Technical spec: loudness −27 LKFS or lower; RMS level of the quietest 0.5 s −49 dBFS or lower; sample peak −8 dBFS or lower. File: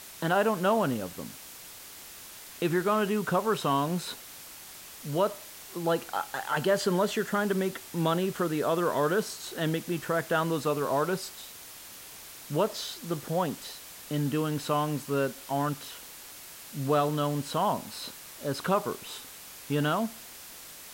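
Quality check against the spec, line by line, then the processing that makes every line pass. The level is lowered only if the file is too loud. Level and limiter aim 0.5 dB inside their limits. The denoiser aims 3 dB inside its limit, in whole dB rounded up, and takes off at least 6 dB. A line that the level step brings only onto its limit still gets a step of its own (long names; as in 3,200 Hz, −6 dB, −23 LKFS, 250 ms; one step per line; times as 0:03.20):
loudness −29.5 LKFS: in spec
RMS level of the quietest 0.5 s −46 dBFS: out of spec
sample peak −13.0 dBFS: in spec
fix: broadband denoise 6 dB, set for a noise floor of −46 dBFS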